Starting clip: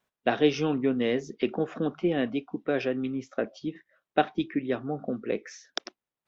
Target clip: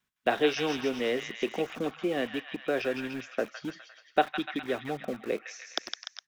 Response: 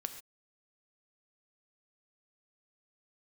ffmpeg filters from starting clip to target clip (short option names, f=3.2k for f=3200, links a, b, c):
-filter_complex "[0:a]acrossover=split=350|1000[a][b][c];[a]acompressor=threshold=-39dB:ratio=6[d];[b]aeval=exprs='val(0)*gte(abs(val(0)),0.0075)':c=same[e];[c]aecho=1:1:160|296|411.6|509.9|593.4:0.631|0.398|0.251|0.158|0.1[f];[d][e][f]amix=inputs=3:normalize=0"